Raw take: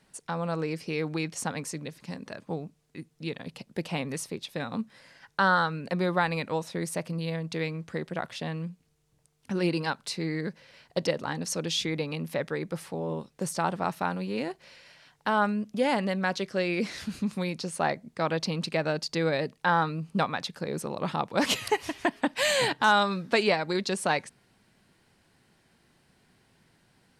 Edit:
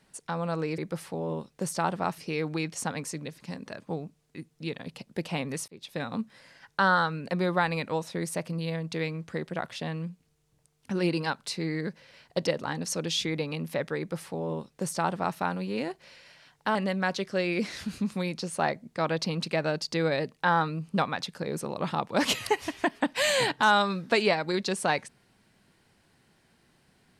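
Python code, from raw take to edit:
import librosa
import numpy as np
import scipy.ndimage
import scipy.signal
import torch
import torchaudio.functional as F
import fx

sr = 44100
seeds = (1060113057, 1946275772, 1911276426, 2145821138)

y = fx.edit(x, sr, fx.fade_in_span(start_s=4.28, length_s=0.27),
    fx.duplicate(start_s=12.58, length_s=1.4, to_s=0.78),
    fx.cut(start_s=15.35, length_s=0.61), tone=tone)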